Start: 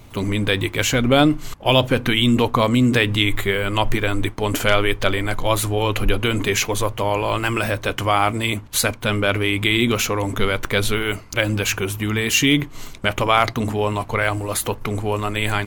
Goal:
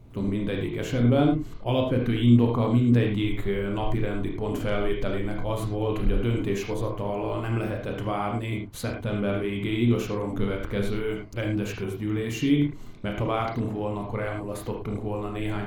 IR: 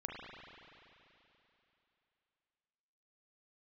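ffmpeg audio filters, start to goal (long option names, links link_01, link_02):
-filter_complex "[0:a]tiltshelf=frequency=780:gain=8[link_01];[1:a]atrim=start_sample=2205,afade=type=out:start_time=0.21:duration=0.01,atrim=end_sample=9702,asetrate=61740,aresample=44100[link_02];[link_01][link_02]afir=irnorm=-1:irlink=0,volume=-5.5dB"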